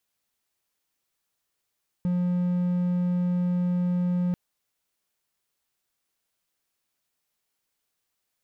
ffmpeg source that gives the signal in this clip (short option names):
-f lavfi -i "aevalsrc='0.1*(1-4*abs(mod(178*t+0.25,1)-0.5))':d=2.29:s=44100"